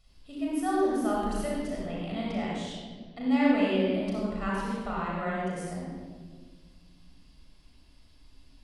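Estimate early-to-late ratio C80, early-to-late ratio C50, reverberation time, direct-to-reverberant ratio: 0.0 dB, -2.5 dB, 1.6 s, -5.0 dB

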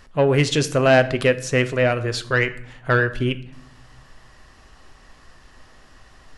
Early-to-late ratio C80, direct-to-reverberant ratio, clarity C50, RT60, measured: 18.5 dB, 9.5 dB, 15.5 dB, 0.70 s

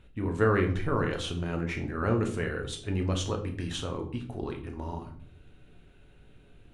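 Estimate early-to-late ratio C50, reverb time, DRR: 10.0 dB, 0.55 s, 3.0 dB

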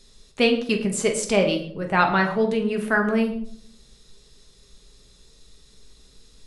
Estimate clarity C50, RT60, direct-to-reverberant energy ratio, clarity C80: 9.5 dB, no single decay rate, 2.5 dB, 12.0 dB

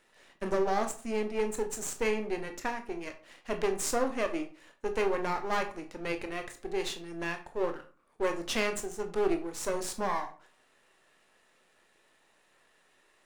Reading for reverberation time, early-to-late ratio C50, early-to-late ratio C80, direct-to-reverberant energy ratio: 0.40 s, 12.0 dB, 17.0 dB, 5.5 dB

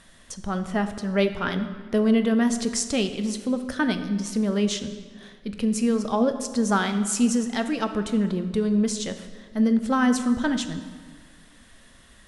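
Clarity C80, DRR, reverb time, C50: 11.5 dB, 7.5 dB, 1.7 s, 10.0 dB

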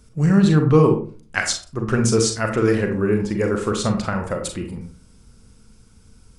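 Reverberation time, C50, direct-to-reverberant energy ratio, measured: 0.40 s, 7.0 dB, 4.0 dB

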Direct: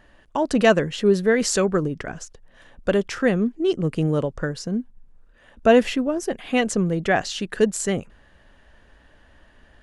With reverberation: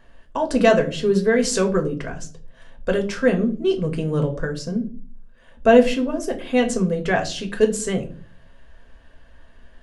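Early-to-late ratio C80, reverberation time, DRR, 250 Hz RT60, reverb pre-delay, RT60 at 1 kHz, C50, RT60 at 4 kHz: 18.0 dB, 0.40 s, 3.0 dB, 0.65 s, 4 ms, 0.35 s, 14.0 dB, 0.30 s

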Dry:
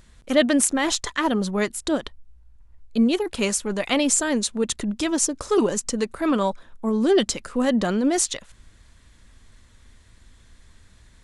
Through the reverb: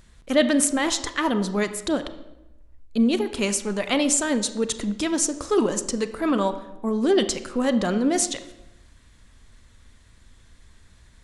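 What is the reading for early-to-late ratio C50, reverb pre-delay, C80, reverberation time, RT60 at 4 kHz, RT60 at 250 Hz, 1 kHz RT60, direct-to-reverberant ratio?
12.0 dB, 29 ms, 14.0 dB, 0.95 s, 0.70 s, 1.1 s, 0.90 s, 11.0 dB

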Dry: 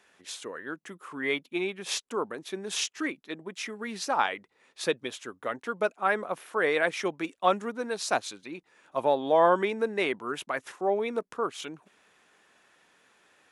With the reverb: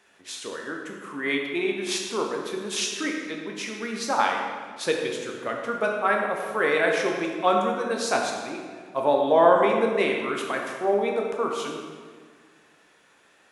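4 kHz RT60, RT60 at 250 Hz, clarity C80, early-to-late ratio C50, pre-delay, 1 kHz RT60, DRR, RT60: 1.2 s, 2.1 s, 4.0 dB, 2.5 dB, 11 ms, 1.6 s, 0.5 dB, 1.7 s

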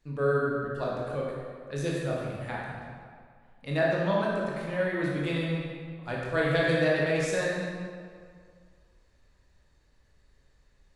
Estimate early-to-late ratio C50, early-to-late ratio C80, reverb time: -1.5 dB, 1.0 dB, 2.1 s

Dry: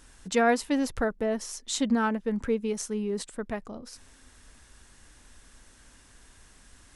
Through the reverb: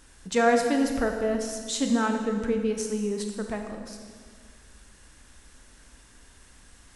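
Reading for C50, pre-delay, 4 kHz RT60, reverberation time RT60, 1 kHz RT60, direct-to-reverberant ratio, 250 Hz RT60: 5.0 dB, 21 ms, 1.6 s, 1.7 s, 1.6 s, 3.5 dB, 2.1 s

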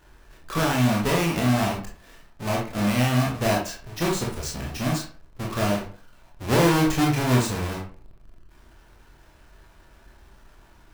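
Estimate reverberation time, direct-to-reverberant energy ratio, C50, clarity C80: 0.45 s, -2.5 dB, 5.0 dB, 11.0 dB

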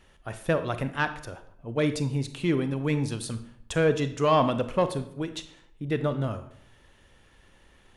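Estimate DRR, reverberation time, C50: 10.0 dB, 0.65 s, 12.5 dB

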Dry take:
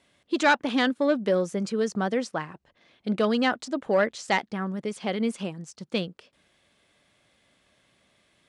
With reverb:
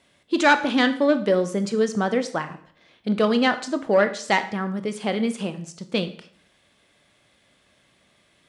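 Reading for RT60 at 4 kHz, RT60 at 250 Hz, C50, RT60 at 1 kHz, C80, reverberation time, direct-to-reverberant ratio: 0.50 s, 0.60 s, 13.5 dB, 0.50 s, 16.5 dB, 0.55 s, 9.5 dB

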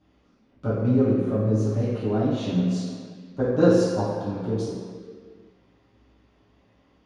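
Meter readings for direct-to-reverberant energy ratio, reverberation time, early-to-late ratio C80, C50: -12.5 dB, no single decay rate, 1.0 dB, -1.0 dB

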